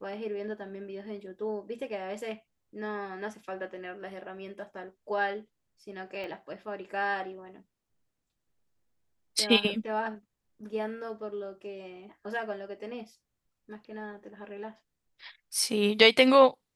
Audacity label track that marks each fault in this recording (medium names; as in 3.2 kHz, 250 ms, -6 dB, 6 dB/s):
6.240000	6.240000	pop -28 dBFS